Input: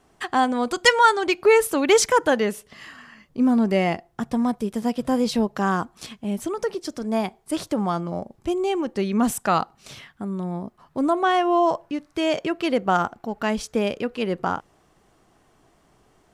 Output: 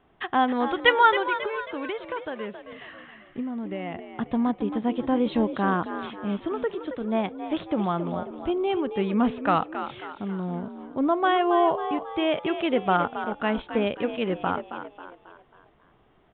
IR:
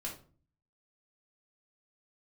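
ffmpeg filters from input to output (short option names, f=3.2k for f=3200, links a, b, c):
-filter_complex "[0:a]asplit=3[a][b][c];[a]afade=t=out:st=1.22:d=0.02[d];[b]acompressor=threshold=-27dB:ratio=10,afade=t=in:st=1.22:d=0.02,afade=t=out:st=3.94:d=0.02[e];[c]afade=t=in:st=3.94:d=0.02[f];[d][e][f]amix=inputs=3:normalize=0,asplit=6[g][h][i][j][k][l];[h]adelay=271,afreqshift=52,volume=-10dB[m];[i]adelay=542,afreqshift=104,volume=-16.9dB[n];[j]adelay=813,afreqshift=156,volume=-23.9dB[o];[k]adelay=1084,afreqshift=208,volume=-30.8dB[p];[l]adelay=1355,afreqshift=260,volume=-37.7dB[q];[g][m][n][o][p][q]amix=inputs=6:normalize=0,aresample=8000,aresample=44100,volume=-2dB"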